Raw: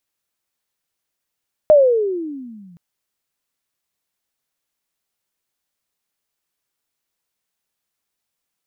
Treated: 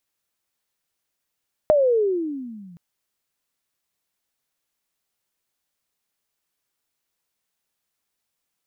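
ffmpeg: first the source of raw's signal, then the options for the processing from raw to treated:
-f lavfi -i "aevalsrc='pow(10,(-5-36.5*t/1.07)/20)*sin(2*PI*626*1.07/(-23*log(2)/12)*(exp(-23*log(2)/12*t/1.07)-1))':d=1.07:s=44100"
-af "acompressor=threshold=0.158:ratio=6"

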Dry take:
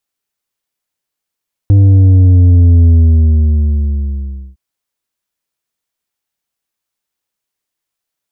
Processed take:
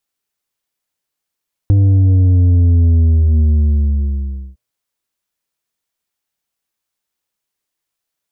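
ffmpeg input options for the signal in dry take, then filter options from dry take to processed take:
-f lavfi -i "aevalsrc='0.631*clip((2.86-t)/1.69,0,1)*tanh(2.11*sin(2*PI*100*2.86/log(65/100)*(exp(log(65/100)*t/2.86)-1)))/tanh(2.11)':d=2.86:s=44100"
-af "bandreject=f=119.6:t=h:w=4,bandreject=f=239.2:t=h:w=4,bandreject=f=358.8:t=h:w=4,bandreject=f=478.4:t=h:w=4,bandreject=f=598:t=h:w=4,bandreject=f=717.6:t=h:w=4,bandreject=f=837.2:t=h:w=4,bandreject=f=956.8:t=h:w=4,bandreject=f=1076.4:t=h:w=4,bandreject=f=1196:t=h:w=4,bandreject=f=1315.6:t=h:w=4,bandreject=f=1435.2:t=h:w=4,bandreject=f=1554.8:t=h:w=4,bandreject=f=1674.4:t=h:w=4,bandreject=f=1794:t=h:w=4,bandreject=f=1913.6:t=h:w=4,bandreject=f=2033.2:t=h:w=4,bandreject=f=2152.8:t=h:w=4,bandreject=f=2272.4:t=h:w=4,bandreject=f=2392:t=h:w=4,bandreject=f=2511.6:t=h:w=4,bandreject=f=2631.2:t=h:w=4,bandreject=f=2750.8:t=h:w=4,bandreject=f=2870.4:t=h:w=4,bandreject=f=2990:t=h:w=4,bandreject=f=3109.6:t=h:w=4,bandreject=f=3229.2:t=h:w=4,acompressor=threshold=0.355:ratio=6"

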